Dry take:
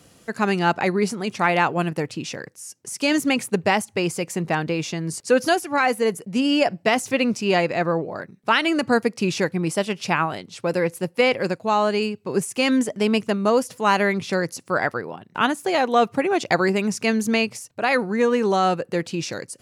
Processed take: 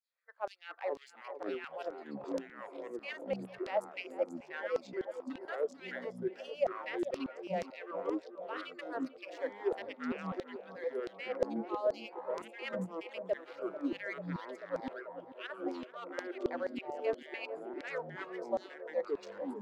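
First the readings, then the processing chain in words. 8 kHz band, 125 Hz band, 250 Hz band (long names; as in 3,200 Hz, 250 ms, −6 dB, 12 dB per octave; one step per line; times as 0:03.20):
below −30 dB, −22.0 dB, −19.0 dB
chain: adaptive Wiener filter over 15 samples
first-order pre-emphasis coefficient 0.8
noise reduction from a noise print of the clip's start 11 dB
three-way crossover with the lows and the highs turned down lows −21 dB, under 390 Hz, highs −24 dB, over 3,200 Hz
reversed playback
downward compressor, threshold −45 dBFS, peak gain reduction 18 dB
reversed playback
hollow resonant body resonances 530 Hz, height 13 dB, ringing for 25 ms
auto-filter high-pass saw down 2.1 Hz 490–5,700 Hz
two-band tremolo in antiphase 6.9 Hz, depth 70%, crossover 1,500 Hz
delay with pitch and tempo change per echo 297 ms, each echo −6 semitones, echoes 3
on a send: feedback echo with a band-pass in the loop 440 ms, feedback 81%, band-pass 550 Hz, level −10.5 dB
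on the sum: level +5 dB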